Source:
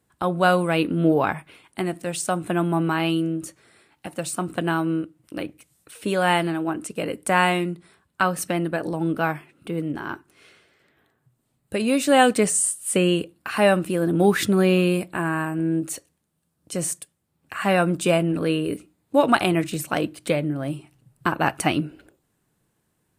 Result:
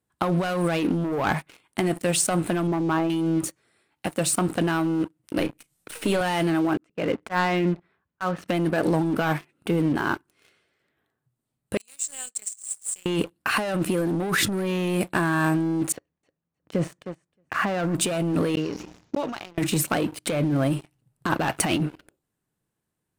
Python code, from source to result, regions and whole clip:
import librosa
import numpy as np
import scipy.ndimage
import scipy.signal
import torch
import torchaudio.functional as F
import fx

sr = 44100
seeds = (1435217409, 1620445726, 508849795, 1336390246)

y = fx.chain(x, sr, fx.envelope_sharpen(power=1.5),
    fx.lowpass(hz=1200.0, slope=12), at=(2.67, 3.1))
y = fx.chain(y, sr, fx.halfwave_gain(db=-3.0),
    fx.doubler(ms=35.0, db=-11.0),
    fx.band_squash(depth_pct=40), at=(5.38, 6.21))
y = fx.chain(y, sr, fx.cheby1_lowpass(hz=2100.0, order=2),
    fx.auto_swell(attack_ms=236.0), at=(6.77, 8.48))
y = fx.chain(y, sr, fx.bandpass_q(hz=7500.0, q=10.0),
    fx.over_compress(threshold_db=-36.0, ratio=-0.5), at=(11.77, 13.06))
y = fx.chain(y, sr, fx.lowpass(hz=2100.0, slope=12),
    fx.echo_feedback(ms=311, feedback_pct=16, wet_db=-13.5), at=(15.92, 17.95))
y = fx.chain(y, sr, fx.gate_flip(shuts_db=-18.0, range_db=-39),
    fx.resample_bad(factor=3, down='none', up='filtered'),
    fx.sustainer(db_per_s=47.0), at=(18.55, 19.58))
y = fx.leveller(y, sr, passes=3)
y = fx.over_compress(y, sr, threshold_db=-16.0, ratio=-1.0)
y = y * 10.0 ** (-7.0 / 20.0)